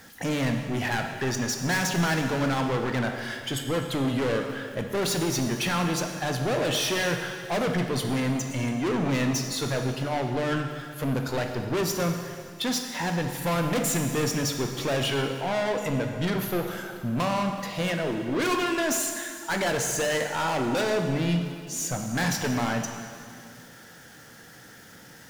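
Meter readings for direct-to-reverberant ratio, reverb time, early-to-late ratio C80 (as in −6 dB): 4.0 dB, 2.2 s, 6.5 dB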